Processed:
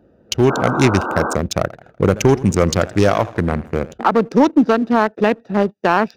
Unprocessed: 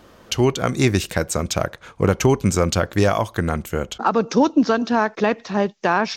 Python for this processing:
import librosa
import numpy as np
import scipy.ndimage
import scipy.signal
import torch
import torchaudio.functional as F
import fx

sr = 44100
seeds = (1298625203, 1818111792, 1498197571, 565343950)

y = fx.wiener(x, sr, points=41)
y = scipy.signal.sosfilt(scipy.signal.butter(4, 45.0, 'highpass', fs=sr, output='sos'), y)
y = fx.low_shelf(y, sr, hz=120.0, db=-5.0)
y = fx.notch(y, sr, hz=7700.0, q=11.0)
y = fx.leveller(y, sr, passes=1)
y = fx.spec_paint(y, sr, seeds[0], shape='noise', start_s=0.49, length_s=0.86, low_hz=200.0, high_hz=1600.0, level_db=-24.0)
y = fx.echo_warbled(y, sr, ms=83, feedback_pct=50, rate_hz=2.8, cents=161, wet_db=-18, at=(1.61, 3.94))
y = F.gain(torch.from_numpy(y), 2.0).numpy()